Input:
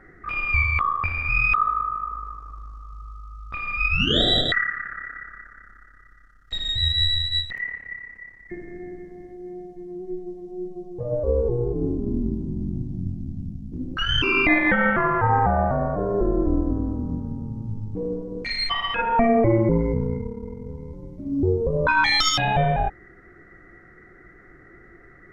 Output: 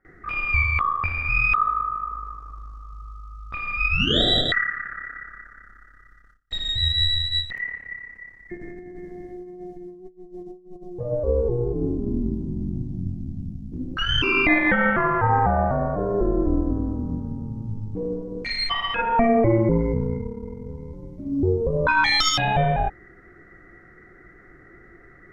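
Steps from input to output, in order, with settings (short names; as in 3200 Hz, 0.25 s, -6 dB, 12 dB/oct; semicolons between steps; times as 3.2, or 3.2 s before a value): gate with hold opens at -41 dBFS; 8.57–10.9 negative-ratio compressor -38 dBFS, ratio -0.5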